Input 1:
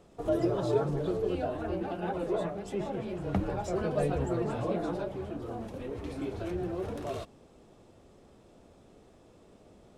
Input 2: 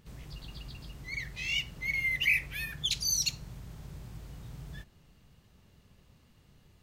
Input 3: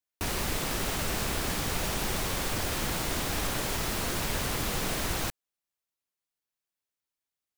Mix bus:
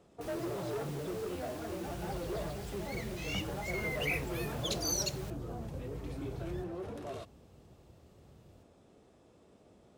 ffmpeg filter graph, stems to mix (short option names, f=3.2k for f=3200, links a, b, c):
-filter_complex "[0:a]asoftclip=type=tanh:threshold=-28.5dB,volume=-4.5dB[a];[1:a]bass=f=250:g=13,treble=f=4k:g=6,adelay=1800,volume=-9.5dB[b];[2:a]volume=-19dB[c];[a][b][c]amix=inputs=3:normalize=0,highpass=54"